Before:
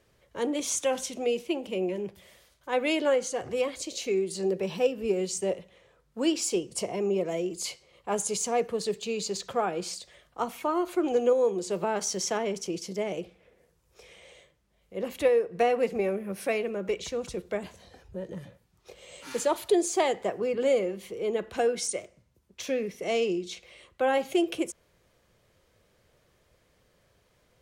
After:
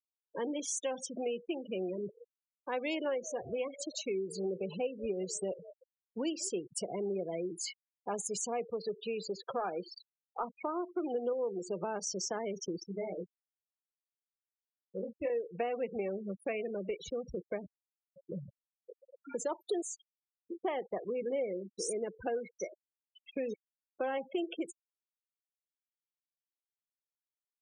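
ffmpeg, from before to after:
-filter_complex "[0:a]asplit=3[a][b][c];[a]afade=t=out:st=1.76:d=0.02[d];[b]asplit=4[e][f][g][h];[f]adelay=192,afreqshift=59,volume=-20dB[i];[g]adelay=384,afreqshift=118,volume=-27.5dB[j];[h]adelay=576,afreqshift=177,volume=-35.1dB[k];[e][i][j][k]amix=inputs=4:normalize=0,afade=t=in:st=1.76:d=0.02,afade=t=out:st=6.48:d=0.02[l];[c]afade=t=in:st=6.48:d=0.02[m];[d][l][m]amix=inputs=3:normalize=0,asettb=1/sr,asplit=3[n][o][p];[n]atrim=end=8.714[q];[o]atrim=start=8.71:end=10.45,asetpts=PTS-STARTPTS,afade=t=in:d=0.004:c=qsin,afade=t=out:st=1.736:d=0.004:c=qsin,asplit=2[r][s];[s]highpass=f=720:p=1,volume=11dB,asoftclip=type=tanh:threshold=-15dB[t];[r][t]amix=inputs=2:normalize=0,lowpass=f=1.6k:p=1,volume=-6dB[u];[p]atrim=start=10.446[v];[q][u]acrossfade=d=0.004:c1=hsin:c2=qsin[w];[w][v]acrossfade=d=0.004:c1=qsin:c2=hsin,asettb=1/sr,asplit=3[x][y][z];[x]atrim=end=12.834[aa];[y]atrim=start=12.83:end=15.3,asetpts=PTS-STARTPTS,afade=t=in:d=0.004:c=qsin,afade=t=out:st=2.466:d=0.004:c=qsin,flanger=delay=19.5:depth=2.7:speed=1.5[ab];[z]atrim=start=15.296[ac];[aa][ab]acrossfade=d=0.004:c1=hsin:c2=qsin[ad];[ad][ac]acrossfade=d=0.004:c1=qsin:c2=hsin,asettb=1/sr,asplit=3[ae][af][ag];[ae]atrim=end=19.824[ah];[af]atrim=start=19.82:end=23.54,asetpts=PTS-STARTPTS,afade=t=in:d=0.004:c=qsin,afade=t=out:st=3.716:d=0.004:c=qsin,acrossover=split=3900[ai][aj];[ai]adelay=680[ak];[ak][aj]amix=inputs=2:normalize=0,atrim=end_sample=164052[al];[ag]atrim=start=23.536[am];[ah][al]acrossfade=d=0.004:c1=hsin:c2=qsin[an];[an][am]acrossfade=d=0.004:c1=qsin:c2=hsin,asplit=2[ao][ap];[ao]atrim=end=18.29,asetpts=PTS-STARTPTS,afade=t=out:st=17.61:d=0.68[aq];[ap]atrim=start=18.29,asetpts=PTS-STARTPTS,afade=t=in:d=0.004:c=hsin[ar];[aq][ar]concat=n=2:v=0:a=1,afftfilt=real='re*gte(hypot(re,im),0.0282)':imag='im*gte(hypot(re,im),0.0282)':win_size=1024:overlap=0.75,acompressor=threshold=-38dB:ratio=2.5,volume=1dB"

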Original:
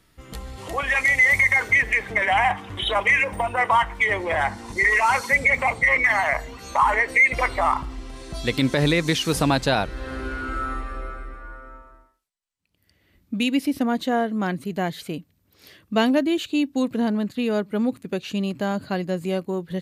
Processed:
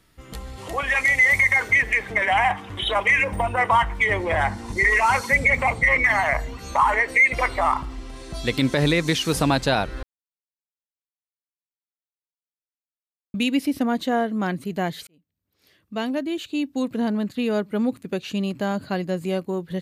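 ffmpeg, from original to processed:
-filter_complex "[0:a]asettb=1/sr,asplit=3[a][b][c];[a]atrim=end=3.184[d];[b]atrim=start=3.18:end=6.81,asetpts=PTS-STARTPTS,afade=t=in:d=0.004:c=qsin,afade=t=out:st=3.626:d=0.004:c=qsin,lowshelf=f=220:g=7.5[e];[c]atrim=start=6.806[f];[d][e]acrossfade=d=0.004:c1=hsin:c2=qsin[g];[g][f]acrossfade=d=0.004:c1=qsin:c2=hsin,asplit=4[h][i][j][k];[h]atrim=end=10.03,asetpts=PTS-STARTPTS,afade=t=out:st=10.026:d=0.004:c=hsin[l];[i]atrim=start=10.03:end=13.34,asetpts=PTS-STARTPTS,volume=0[m];[j]atrim=start=13.34:end=15.07,asetpts=PTS-STARTPTS,afade=t=in:d=0.004:c=hsin,afade=t=out:st=1.726:d=0.004:c=hsin[n];[k]atrim=start=15.07,asetpts=PTS-STARTPTS,afade=t=in:d=2.23[o];[l][m][n][o]concat=n=4:v=0:a=1"

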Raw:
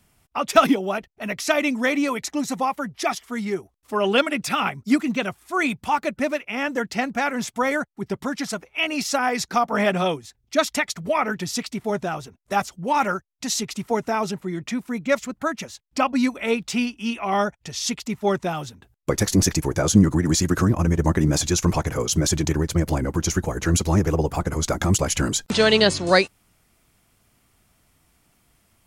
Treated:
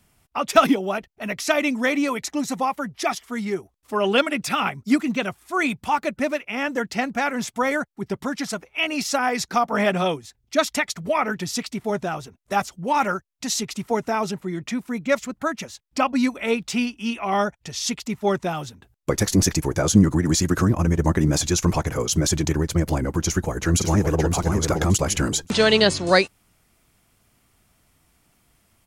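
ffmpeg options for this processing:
-filter_complex "[0:a]asplit=2[a][b];[b]afade=t=in:st=23.21:d=0.01,afade=t=out:st=24.27:d=0.01,aecho=0:1:570|1140|1710:0.595662|0.119132|0.0238265[c];[a][c]amix=inputs=2:normalize=0"

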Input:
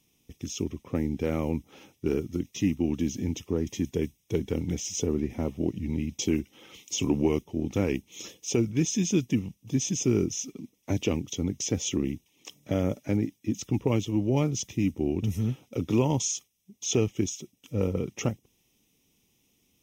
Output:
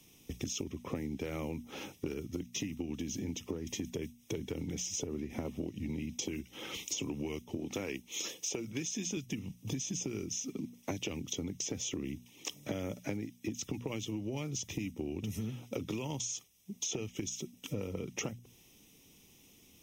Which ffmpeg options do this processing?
-filter_complex "[0:a]asplit=3[a][b][c];[a]afade=t=out:st=2.13:d=0.02[d];[b]tremolo=f=5.4:d=0.38,afade=t=in:st=2.13:d=0.02,afade=t=out:st=5.44:d=0.02[e];[c]afade=t=in:st=5.44:d=0.02[f];[d][e][f]amix=inputs=3:normalize=0,asettb=1/sr,asplit=3[g][h][i];[g]atrim=end=7.564[j];[h]atrim=start=7.56:end=9.17,asetpts=PTS-STARTPTS,afade=t=in:d=0.004:c=qsin,afade=t=out:st=1.606:d=0.004:c=qsin,highpass=f=380:p=1[k];[i]atrim=start=9.166[l];[j][k]acrossfade=d=0.004:c1=hsin:c2=qsin[m];[m][l]acrossfade=d=0.004:c1=qsin:c2=hsin,acrossover=split=120|1800[n][o][p];[n]acompressor=threshold=-46dB:ratio=4[q];[o]acompressor=threshold=-33dB:ratio=4[r];[p]acompressor=threshold=-34dB:ratio=4[s];[q][r][s]amix=inputs=3:normalize=0,bandreject=f=60:t=h:w=6,bandreject=f=120:t=h:w=6,bandreject=f=180:t=h:w=6,bandreject=f=240:t=h:w=6,acompressor=threshold=-43dB:ratio=6,volume=8dB"

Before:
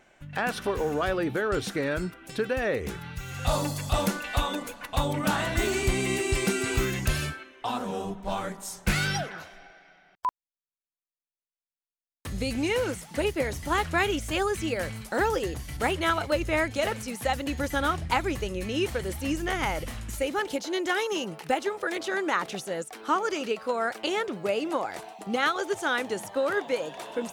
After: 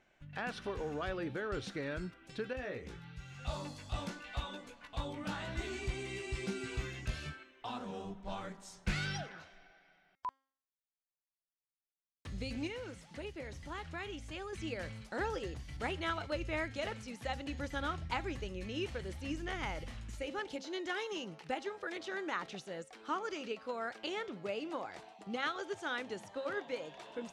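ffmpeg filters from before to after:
-filter_complex "[0:a]asettb=1/sr,asplit=3[a][b][c];[a]atrim=end=2.534[d];[b]atrim=start=2.53:end=7.26,asetpts=PTS-STARTPTS,afade=t=in:d=0.004:c=qsin,afade=t=out:st=4.726:d=0.004:c=qsin,flanger=delay=15.5:depth=2.3:speed=1[e];[c]atrim=start=7.256[f];[d][e]acrossfade=d=0.004:c1=hsin:c2=qsin[g];[g][f]acrossfade=d=0.004:c1=qsin:c2=hsin,asettb=1/sr,asplit=3[h][i][j];[h]atrim=end=12.674[k];[i]atrim=start=12.67:end=14.53,asetpts=PTS-STARTPTS,afade=t=in:d=0.004:c=qsin,afade=t=out:st=1.856:d=0.004:c=qsin,acompressor=threshold=-39dB:ratio=1.5:attack=3.2:release=140:knee=1:detection=peak[l];[j]atrim=start=14.526[m];[k][l]acrossfade=d=0.004:c1=hsin:c2=qsin[n];[n][m]acrossfade=d=0.004:c1=qsin:c2=hsin,lowpass=5.3k,equalizer=f=700:w=0.35:g=-4,bandreject=f=268.4:t=h:w=4,bandreject=f=536.8:t=h:w=4,bandreject=f=805.2:t=h:w=4,bandreject=f=1.0736k:t=h:w=4,bandreject=f=1.342k:t=h:w=4,bandreject=f=1.6104k:t=h:w=4,bandreject=f=1.8788k:t=h:w=4,bandreject=f=2.1472k:t=h:w=4,bandreject=f=2.4156k:t=h:w=4,bandreject=f=2.684k:t=h:w=4,bandreject=f=2.9524k:t=h:w=4,bandreject=f=3.2208k:t=h:w=4,bandreject=f=3.4892k:t=h:w=4,bandreject=f=3.7576k:t=h:w=4,bandreject=f=4.026k:t=h:w=4,bandreject=f=4.2944k:t=h:w=4,bandreject=f=4.5628k:t=h:w=4,bandreject=f=4.8312k:t=h:w=4,bandreject=f=5.0996k:t=h:w=4,bandreject=f=5.368k:t=h:w=4,bandreject=f=5.6364k:t=h:w=4,bandreject=f=5.9048k:t=h:w=4,bandreject=f=6.1732k:t=h:w=4,bandreject=f=6.4416k:t=h:w=4,bandreject=f=6.71k:t=h:w=4,bandreject=f=6.9784k:t=h:w=4,bandreject=f=7.2468k:t=h:w=4,bandreject=f=7.5152k:t=h:w=4,bandreject=f=7.7836k:t=h:w=4,bandreject=f=8.052k:t=h:w=4,bandreject=f=8.3204k:t=h:w=4,bandreject=f=8.5888k:t=h:w=4,bandreject=f=8.8572k:t=h:w=4,bandreject=f=9.1256k:t=h:w=4,bandreject=f=9.394k:t=h:w=4,bandreject=f=9.6624k:t=h:w=4,bandreject=f=9.9308k:t=h:w=4,bandreject=f=10.1992k:t=h:w=4,volume=-8dB"

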